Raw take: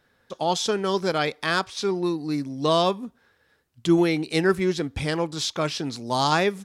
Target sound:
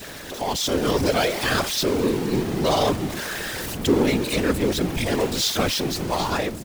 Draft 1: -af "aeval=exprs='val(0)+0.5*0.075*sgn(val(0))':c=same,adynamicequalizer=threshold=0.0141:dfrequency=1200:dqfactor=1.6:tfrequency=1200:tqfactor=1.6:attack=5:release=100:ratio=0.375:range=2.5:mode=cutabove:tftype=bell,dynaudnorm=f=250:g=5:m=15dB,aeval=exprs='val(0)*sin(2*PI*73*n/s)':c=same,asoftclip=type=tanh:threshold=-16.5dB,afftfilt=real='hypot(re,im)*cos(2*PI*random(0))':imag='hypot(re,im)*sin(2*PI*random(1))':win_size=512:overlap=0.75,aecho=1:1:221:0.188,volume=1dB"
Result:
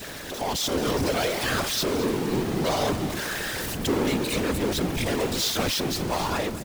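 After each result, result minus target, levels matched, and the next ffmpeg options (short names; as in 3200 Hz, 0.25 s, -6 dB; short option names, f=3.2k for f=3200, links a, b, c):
echo-to-direct +11.5 dB; soft clip: distortion +10 dB
-af "aeval=exprs='val(0)+0.5*0.075*sgn(val(0))':c=same,adynamicequalizer=threshold=0.0141:dfrequency=1200:dqfactor=1.6:tfrequency=1200:tqfactor=1.6:attack=5:release=100:ratio=0.375:range=2.5:mode=cutabove:tftype=bell,dynaudnorm=f=250:g=5:m=15dB,aeval=exprs='val(0)*sin(2*PI*73*n/s)':c=same,asoftclip=type=tanh:threshold=-16.5dB,afftfilt=real='hypot(re,im)*cos(2*PI*random(0))':imag='hypot(re,im)*sin(2*PI*random(1))':win_size=512:overlap=0.75,aecho=1:1:221:0.0501,volume=1dB"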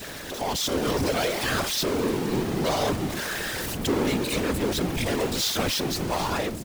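soft clip: distortion +10 dB
-af "aeval=exprs='val(0)+0.5*0.075*sgn(val(0))':c=same,adynamicequalizer=threshold=0.0141:dfrequency=1200:dqfactor=1.6:tfrequency=1200:tqfactor=1.6:attack=5:release=100:ratio=0.375:range=2.5:mode=cutabove:tftype=bell,dynaudnorm=f=250:g=5:m=15dB,aeval=exprs='val(0)*sin(2*PI*73*n/s)':c=same,asoftclip=type=tanh:threshold=-6.5dB,afftfilt=real='hypot(re,im)*cos(2*PI*random(0))':imag='hypot(re,im)*sin(2*PI*random(1))':win_size=512:overlap=0.75,aecho=1:1:221:0.0501,volume=1dB"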